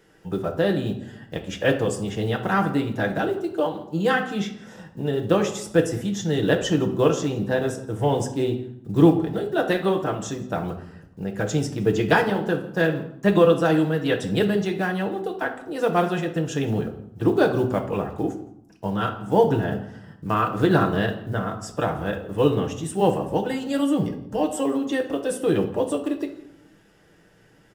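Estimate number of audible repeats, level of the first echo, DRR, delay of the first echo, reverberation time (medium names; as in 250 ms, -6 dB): 1, -21.5 dB, 3.0 dB, 168 ms, 0.75 s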